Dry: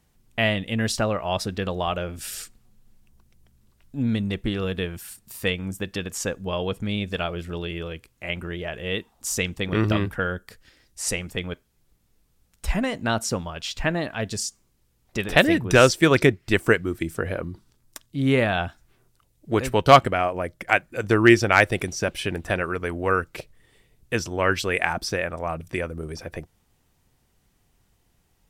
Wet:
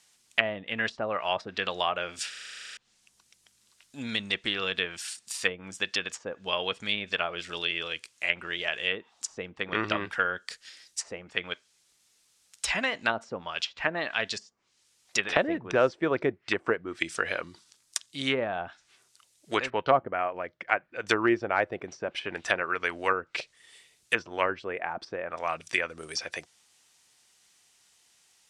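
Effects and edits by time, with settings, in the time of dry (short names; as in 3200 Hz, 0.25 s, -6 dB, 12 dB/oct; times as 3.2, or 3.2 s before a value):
2.29 stutter in place 0.04 s, 12 plays
19.7–21.07 tape spacing loss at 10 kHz 44 dB
whole clip: weighting filter ITU-R 468; treble ducked by the level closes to 700 Hz, closed at -18 dBFS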